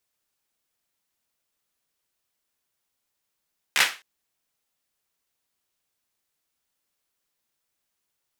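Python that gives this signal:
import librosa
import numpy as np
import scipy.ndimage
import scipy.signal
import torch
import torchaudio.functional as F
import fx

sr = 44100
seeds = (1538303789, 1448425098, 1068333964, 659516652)

y = fx.drum_clap(sr, seeds[0], length_s=0.26, bursts=4, spacing_ms=14, hz=2000.0, decay_s=0.3)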